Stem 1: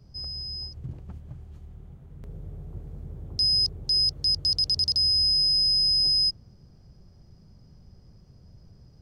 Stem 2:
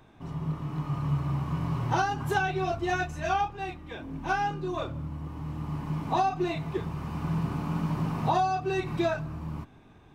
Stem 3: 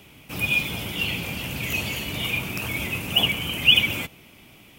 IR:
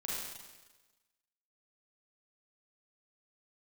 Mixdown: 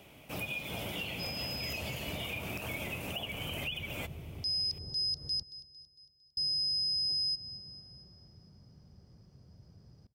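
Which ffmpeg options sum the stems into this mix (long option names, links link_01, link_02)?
-filter_complex "[0:a]highpass=71,adelay=1050,volume=-3.5dB,asplit=3[link_01][link_02][link_03];[link_01]atrim=end=5.43,asetpts=PTS-STARTPTS,afade=type=out:start_time=5.426:duration=0.004:curve=hsin[link_04];[link_02]atrim=start=5.43:end=6.37,asetpts=PTS-STARTPTS,volume=0[link_05];[link_03]atrim=start=6.37,asetpts=PTS-STARTPTS,afade=type=in:duration=0.004:curve=hsin[link_06];[link_04][link_05][link_06]concat=n=3:v=0:a=1,asplit=2[link_07][link_08];[link_08]volume=-22dB[link_09];[2:a]equalizer=frequency=620:width=1.6:gain=9,acompressor=threshold=-26dB:ratio=6,volume=-7.5dB[link_10];[link_09]aecho=0:1:227|454|681|908|1135|1362|1589:1|0.51|0.26|0.133|0.0677|0.0345|0.0176[link_11];[link_07][link_10][link_11]amix=inputs=3:normalize=0,alimiter=level_in=4dB:limit=-24dB:level=0:latency=1:release=126,volume=-4dB"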